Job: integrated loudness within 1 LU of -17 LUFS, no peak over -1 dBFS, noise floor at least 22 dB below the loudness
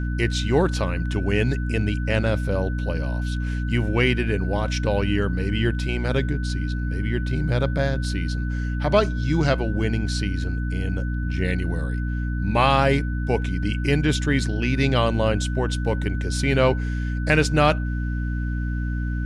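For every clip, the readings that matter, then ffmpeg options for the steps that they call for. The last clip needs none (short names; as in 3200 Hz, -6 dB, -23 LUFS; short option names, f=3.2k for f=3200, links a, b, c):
hum 60 Hz; harmonics up to 300 Hz; hum level -23 dBFS; steady tone 1500 Hz; tone level -37 dBFS; loudness -23.5 LUFS; peak -5.5 dBFS; loudness target -17.0 LUFS
-> -af "bandreject=f=60:t=h:w=6,bandreject=f=120:t=h:w=6,bandreject=f=180:t=h:w=6,bandreject=f=240:t=h:w=6,bandreject=f=300:t=h:w=6"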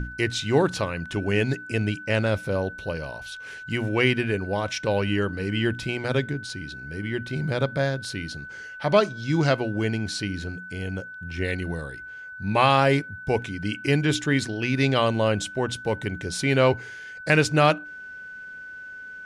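hum none; steady tone 1500 Hz; tone level -37 dBFS
-> -af "bandreject=f=1.5k:w=30"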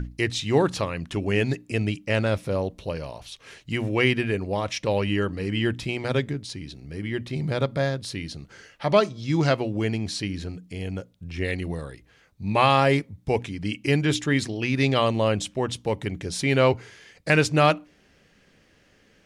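steady tone none; loudness -25.0 LUFS; peak -7.0 dBFS; loudness target -17.0 LUFS
-> -af "volume=8dB,alimiter=limit=-1dB:level=0:latency=1"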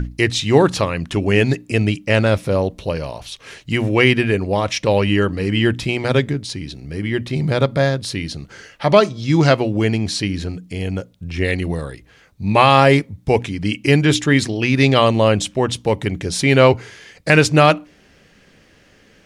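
loudness -17.0 LUFS; peak -1.0 dBFS; noise floor -52 dBFS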